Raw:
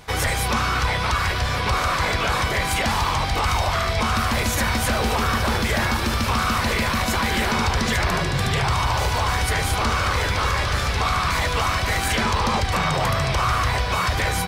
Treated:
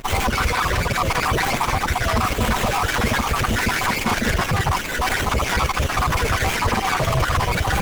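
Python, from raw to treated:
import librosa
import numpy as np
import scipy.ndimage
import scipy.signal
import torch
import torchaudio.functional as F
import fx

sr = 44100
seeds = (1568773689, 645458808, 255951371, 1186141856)

p1 = fx.spec_dropout(x, sr, seeds[0], share_pct=59)
p2 = fx.high_shelf(p1, sr, hz=5700.0, db=11.5)
p3 = fx.over_compress(p2, sr, threshold_db=-27.0, ratio=-1.0)
p4 = p2 + (p3 * 10.0 ** (-1.0 / 20.0))
p5 = fx.quant_dither(p4, sr, seeds[1], bits=6, dither='none')
p6 = fx.vibrato(p5, sr, rate_hz=3.0, depth_cents=42.0)
p7 = fx.stretch_vocoder(p6, sr, factor=0.54)
p8 = fx.running_max(p7, sr, window=9)
y = p8 * 10.0 ** (3.0 / 20.0)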